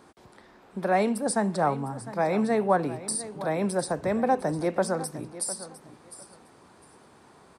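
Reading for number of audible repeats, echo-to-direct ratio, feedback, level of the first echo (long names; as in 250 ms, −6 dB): 2, −15.0 dB, 19%, −15.0 dB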